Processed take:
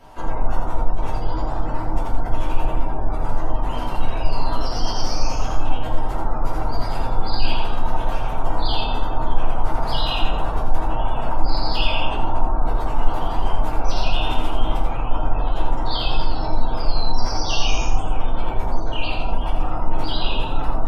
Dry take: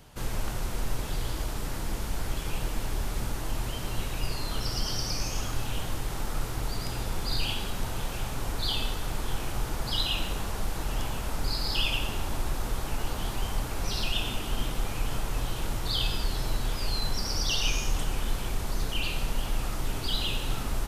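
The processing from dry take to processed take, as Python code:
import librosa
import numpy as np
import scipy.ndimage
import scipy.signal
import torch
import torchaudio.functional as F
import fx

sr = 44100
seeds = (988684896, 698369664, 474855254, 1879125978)

p1 = fx.spec_gate(x, sr, threshold_db=-30, keep='strong')
p2 = fx.peak_eq(p1, sr, hz=820.0, db=13.0, octaves=1.6)
p3 = p2 + fx.echo_single(p2, sr, ms=84, db=-5.5, dry=0)
p4 = fx.room_shoebox(p3, sr, seeds[0], volume_m3=190.0, walls='furnished', distance_m=2.8)
y = p4 * librosa.db_to_amplitude(-4.5)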